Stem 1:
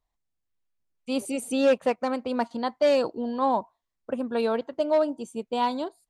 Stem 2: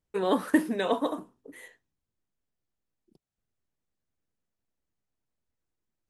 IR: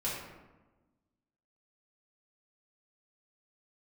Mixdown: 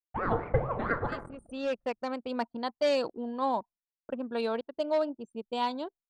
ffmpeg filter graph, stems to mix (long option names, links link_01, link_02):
-filter_complex "[0:a]volume=-6dB[link_01];[1:a]lowpass=1100,aeval=exprs='val(0)*sin(2*PI*560*n/s+560*0.7/4.4*sin(2*PI*4.4*n/s))':channel_layout=same,volume=-3dB,asplit=3[link_02][link_03][link_04];[link_03]volume=-10.5dB[link_05];[link_04]apad=whole_len=268748[link_06];[link_01][link_06]sidechaincompress=threshold=-40dB:ratio=6:attack=26:release=1170[link_07];[2:a]atrim=start_sample=2205[link_08];[link_05][link_08]afir=irnorm=-1:irlink=0[link_09];[link_07][link_02][link_09]amix=inputs=3:normalize=0,anlmdn=0.158,agate=range=-33dB:threshold=-50dB:ratio=3:detection=peak,equalizer=frequency=5300:width_type=o:width=2.8:gain=5.5"